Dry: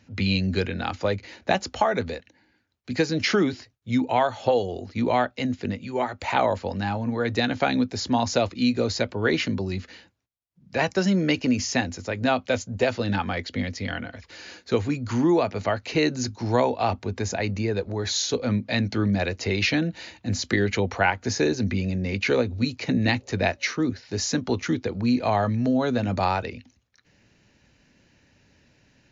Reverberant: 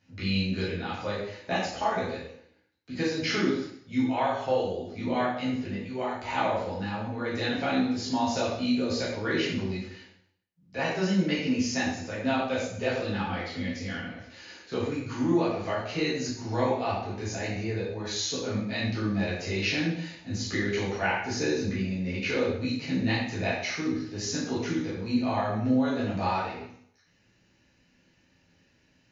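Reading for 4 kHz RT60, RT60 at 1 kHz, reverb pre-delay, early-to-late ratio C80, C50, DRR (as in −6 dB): 0.65 s, 0.65 s, 5 ms, 5.0 dB, 2.0 dB, −9.0 dB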